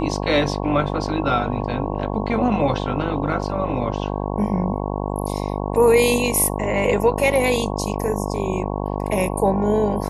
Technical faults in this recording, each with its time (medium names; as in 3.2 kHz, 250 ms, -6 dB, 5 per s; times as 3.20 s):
buzz 50 Hz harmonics 22 -25 dBFS